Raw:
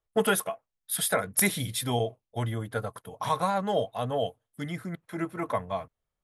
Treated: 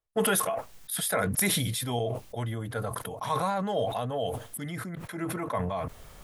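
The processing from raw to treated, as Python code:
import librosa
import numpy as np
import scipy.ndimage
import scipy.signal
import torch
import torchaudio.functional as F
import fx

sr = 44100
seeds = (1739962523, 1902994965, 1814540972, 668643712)

y = fx.sustainer(x, sr, db_per_s=22.0)
y = y * 10.0 ** (-3.0 / 20.0)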